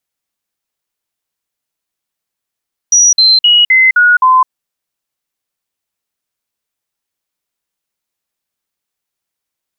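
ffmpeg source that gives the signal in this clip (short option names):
-f lavfi -i "aevalsrc='0.631*clip(min(mod(t,0.26),0.21-mod(t,0.26))/0.005,0,1)*sin(2*PI*5810*pow(2,-floor(t/0.26)/2)*mod(t,0.26))':d=1.56:s=44100"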